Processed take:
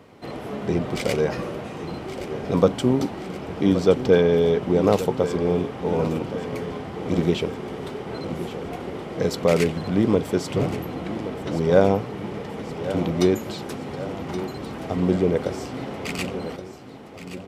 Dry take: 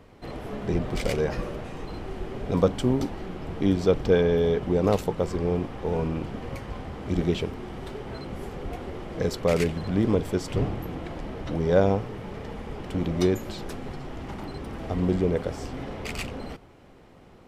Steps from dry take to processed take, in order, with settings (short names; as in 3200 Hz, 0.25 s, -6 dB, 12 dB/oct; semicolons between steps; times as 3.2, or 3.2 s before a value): HPF 120 Hz 12 dB/oct; notch 1700 Hz, Q 24; feedback echo 1.123 s, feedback 58%, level -12.5 dB; gain +4 dB